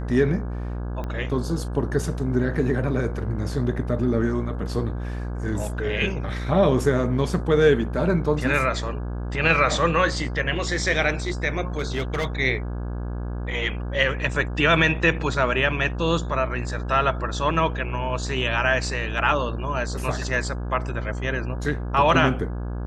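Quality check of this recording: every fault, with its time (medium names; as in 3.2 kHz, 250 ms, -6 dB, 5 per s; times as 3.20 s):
buzz 60 Hz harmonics 28 -29 dBFS
1.04 s: pop -19 dBFS
11.77–12.27 s: clipped -20 dBFS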